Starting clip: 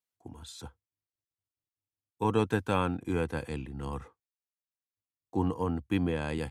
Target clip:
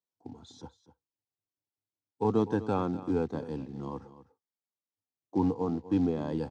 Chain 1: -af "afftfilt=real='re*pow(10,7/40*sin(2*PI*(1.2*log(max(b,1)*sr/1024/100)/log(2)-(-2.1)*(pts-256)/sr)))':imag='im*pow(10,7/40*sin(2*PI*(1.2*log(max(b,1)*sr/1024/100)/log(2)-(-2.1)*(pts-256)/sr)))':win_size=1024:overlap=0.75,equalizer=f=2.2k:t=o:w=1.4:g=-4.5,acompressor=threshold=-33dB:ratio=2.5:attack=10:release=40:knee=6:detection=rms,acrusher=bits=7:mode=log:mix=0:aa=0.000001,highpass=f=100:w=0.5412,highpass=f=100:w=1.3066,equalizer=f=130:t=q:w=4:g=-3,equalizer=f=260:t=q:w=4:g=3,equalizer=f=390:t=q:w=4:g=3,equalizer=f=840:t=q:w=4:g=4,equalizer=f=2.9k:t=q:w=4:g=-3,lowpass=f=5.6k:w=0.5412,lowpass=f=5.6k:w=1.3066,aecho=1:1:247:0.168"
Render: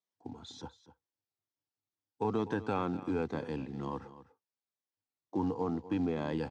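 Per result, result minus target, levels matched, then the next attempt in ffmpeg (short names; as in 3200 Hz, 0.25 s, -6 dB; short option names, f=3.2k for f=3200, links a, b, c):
compressor: peak gain reduction +8 dB; 2000 Hz band +7.5 dB
-af "afftfilt=real='re*pow(10,7/40*sin(2*PI*(1.2*log(max(b,1)*sr/1024/100)/log(2)-(-2.1)*(pts-256)/sr)))':imag='im*pow(10,7/40*sin(2*PI*(1.2*log(max(b,1)*sr/1024/100)/log(2)-(-2.1)*(pts-256)/sr)))':win_size=1024:overlap=0.75,equalizer=f=2.2k:t=o:w=1.4:g=-4.5,acrusher=bits=7:mode=log:mix=0:aa=0.000001,highpass=f=100:w=0.5412,highpass=f=100:w=1.3066,equalizer=f=130:t=q:w=4:g=-3,equalizer=f=260:t=q:w=4:g=3,equalizer=f=390:t=q:w=4:g=3,equalizer=f=840:t=q:w=4:g=4,equalizer=f=2.9k:t=q:w=4:g=-3,lowpass=f=5.6k:w=0.5412,lowpass=f=5.6k:w=1.3066,aecho=1:1:247:0.168"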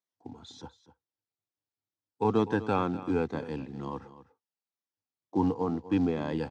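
2000 Hz band +7.0 dB
-af "afftfilt=real='re*pow(10,7/40*sin(2*PI*(1.2*log(max(b,1)*sr/1024/100)/log(2)-(-2.1)*(pts-256)/sr)))':imag='im*pow(10,7/40*sin(2*PI*(1.2*log(max(b,1)*sr/1024/100)/log(2)-(-2.1)*(pts-256)/sr)))':win_size=1024:overlap=0.75,equalizer=f=2.2k:t=o:w=1.4:g=-16,acrusher=bits=7:mode=log:mix=0:aa=0.000001,highpass=f=100:w=0.5412,highpass=f=100:w=1.3066,equalizer=f=130:t=q:w=4:g=-3,equalizer=f=260:t=q:w=4:g=3,equalizer=f=390:t=q:w=4:g=3,equalizer=f=840:t=q:w=4:g=4,equalizer=f=2.9k:t=q:w=4:g=-3,lowpass=f=5.6k:w=0.5412,lowpass=f=5.6k:w=1.3066,aecho=1:1:247:0.168"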